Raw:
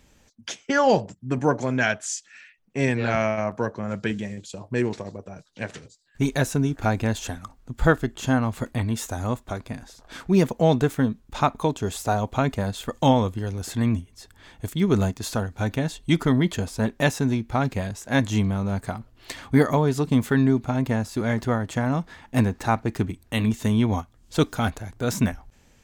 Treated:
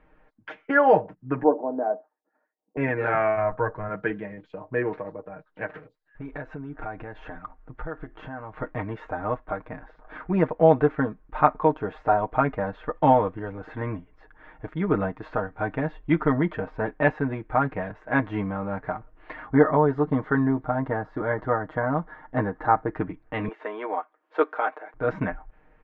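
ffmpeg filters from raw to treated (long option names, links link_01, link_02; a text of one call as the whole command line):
ffmpeg -i in.wav -filter_complex "[0:a]asettb=1/sr,asplit=3[link_01][link_02][link_03];[link_01]atrim=end=1.434[link_04];[link_02]atrim=start=1.43:end=2.77,asetpts=PTS-STARTPTS,afade=type=in:duration=0.004:curve=qsin,afade=type=out:start_time=1.336:duration=0.004:curve=qsin,asuperpass=centerf=440:order=8:qfactor=0.66[link_05];[link_03]atrim=start=2.766[link_06];[link_04][link_05]acrossfade=duration=0.004:curve1=hsin:curve2=qsin[link_07];[link_07][link_06]acrossfade=duration=0.004:curve1=qsin:curve2=hsin,asplit=3[link_08][link_09][link_10];[link_08]afade=type=out:start_time=3.35:duration=0.02[link_11];[link_09]asubboost=boost=9.5:cutoff=86,afade=type=in:start_time=3.35:duration=0.02,afade=type=out:start_time=3.88:duration=0.02[link_12];[link_10]afade=type=in:start_time=3.88:duration=0.02[link_13];[link_11][link_12][link_13]amix=inputs=3:normalize=0,asplit=3[link_14][link_15][link_16];[link_14]afade=type=out:start_time=5.66:duration=0.02[link_17];[link_15]acompressor=threshold=-30dB:ratio=8:attack=3.2:release=140:knee=1:detection=peak,afade=type=in:start_time=5.66:duration=0.02,afade=type=out:start_time=8.57:duration=0.02[link_18];[link_16]afade=type=in:start_time=8.57:duration=0.02[link_19];[link_17][link_18][link_19]amix=inputs=3:normalize=0,asettb=1/sr,asplit=3[link_20][link_21][link_22];[link_20]atrim=end=19.464[link_23];[link_21]atrim=start=19.46:end=22.96,asetpts=PTS-STARTPTS,afade=type=in:duration=0.004:curve=qsin,afade=type=out:start_time=3.496:duration=0.004:curve=qsin,equalizer=frequency=2500:width_type=o:width=0.29:gain=-13.5[link_24];[link_22]atrim=start=22.956[link_25];[link_23][link_24]acrossfade=duration=0.004:curve1=hsin:curve2=qsin[link_26];[link_26][link_25]acrossfade=duration=0.004:curve1=qsin:curve2=hsin,asettb=1/sr,asplit=3[link_27][link_28][link_29];[link_27]atrim=end=23.484[link_30];[link_28]atrim=start=23.48:end=24.94,asetpts=PTS-STARTPTS,afade=type=in:duration=0.004:curve=qsin,afade=type=out:start_time=1.456:duration=0.004:curve=qsin,highpass=frequency=380:width=0.5412,highpass=frequency=380:width=1.3066[link_31];[link_29]atrim=start=24.936[link_32];[link_30][link_31]acrossfade=duration=0.004:curve1=hsin:curve2=qsin[link_33];[link_33][link_32]acrossfade=duration=0.004:curve1=qsin:curve2=hsin,lowpass=frequency=1800:width=0.5412,lowpass=frequency=1800:width=1.3066,equalizer=frequency=120:width_type=o:width=2.5:gain=-12,aecho=1:1:6.5:0.71,volume=2.5dB" out.wav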